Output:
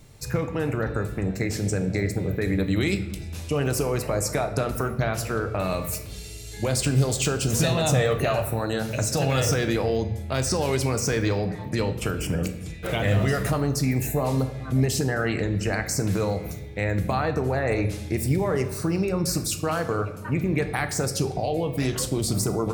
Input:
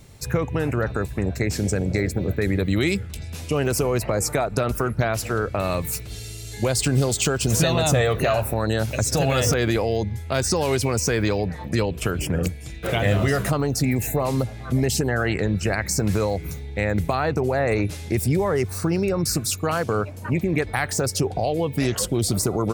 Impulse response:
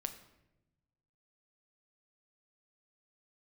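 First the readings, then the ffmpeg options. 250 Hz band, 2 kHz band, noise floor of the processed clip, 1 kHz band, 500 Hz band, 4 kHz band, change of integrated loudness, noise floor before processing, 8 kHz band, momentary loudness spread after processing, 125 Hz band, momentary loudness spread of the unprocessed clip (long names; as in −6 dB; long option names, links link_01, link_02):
−2.0 dB, −3.0 dB, −37 dBFS, −2.5 dB, −2.5 dB, −3.0 dB, −2.5 dB, −36 dBFS, −3.0 dB, 6 LU, −1.5 dB, 6 LU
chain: -filter_complex "[1:a]atrim=start_sample=2205[link_01];[0:a][link_01]afir=irnorm=-1:irlink=0,volume=-1.5dB"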